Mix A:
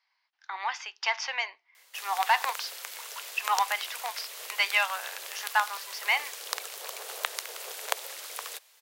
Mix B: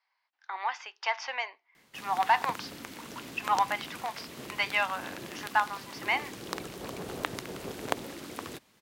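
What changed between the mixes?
background: remove steep high-pass 450 Hz 48 dB/octave; master: add tilt EQ -3 dB/octave

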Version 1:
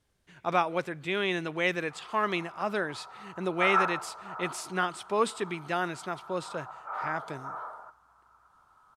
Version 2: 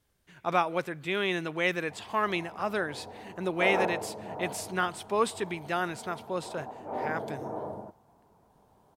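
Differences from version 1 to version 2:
speech: remove low-pass 10 kHz 12 dB/octave; background: remove resonant high-pass 1.3 kHz, resonance Q 14

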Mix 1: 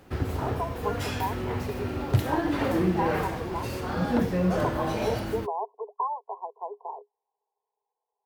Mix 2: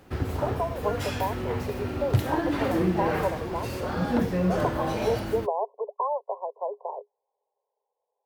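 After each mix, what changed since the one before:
speech: remove static phaser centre 560 Hz, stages 6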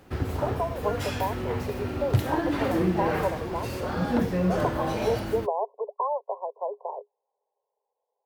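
no change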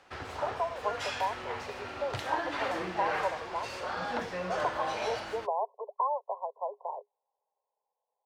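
master: add three-band isolator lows -19 dB, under 590 Hz, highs -23 dB, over 8 kHz

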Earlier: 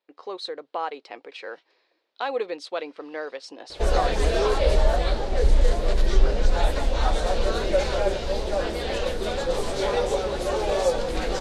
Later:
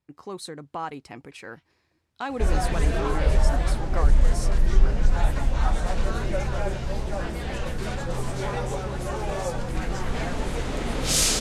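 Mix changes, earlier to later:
speech: remove band-pass 450–3800 Hz; second sound: entry -1.40 s; master: add graphic EQ 125/500/4000 Hz +11/-10/-10 dB

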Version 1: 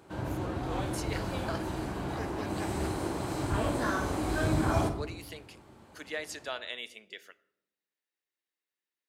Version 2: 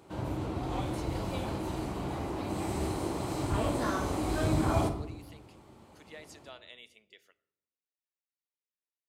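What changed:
speech -11.0 dB; master: add peaking EQ 1.6 kHz -7 dB 0.31 oct

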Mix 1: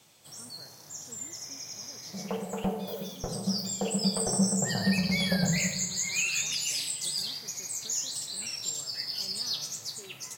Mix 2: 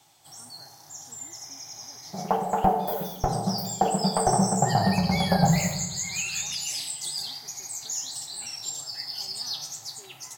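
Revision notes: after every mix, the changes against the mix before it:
second sound +10.5 dB; master: add graphic EQ with 31 bands 200 Hz -11 dB, 500 Hz -11 dB, 800 Hz +11 dB, 2.5 kHz -4 dB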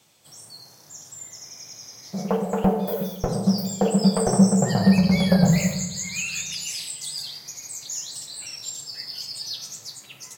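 speech: muted; master: add graphic EQ with 31 bands 200 Hz +11 dB, 500 Hz +11 dB, 800 Hz -11 dB, 2.5 kHz +4 dB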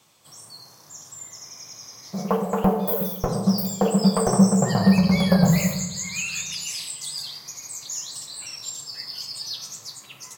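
second sound: add treble shelf 8 kHz +10 dB; master: add peaking EQ 1.1 kHz +8 dB 0.38 oct

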